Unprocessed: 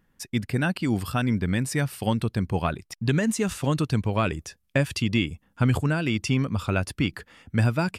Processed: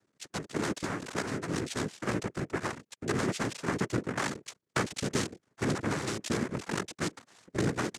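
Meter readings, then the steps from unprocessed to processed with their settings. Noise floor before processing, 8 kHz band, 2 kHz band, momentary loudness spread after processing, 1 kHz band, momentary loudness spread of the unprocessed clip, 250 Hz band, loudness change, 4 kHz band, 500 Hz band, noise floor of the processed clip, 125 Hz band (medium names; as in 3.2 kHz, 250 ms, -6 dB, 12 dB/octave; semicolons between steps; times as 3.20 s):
-70 dBFS, -2.0 dB, -5.5 dB, 5 LU, -4.5 dB, 6 LU, -8.5 dB, -8.0 dB, -5.0 dB, -4.5 dB, -79 dBFS, -12.5 dB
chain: cycle switcher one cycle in 2, muted; noise-vocoded speech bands 3; trim -4 dB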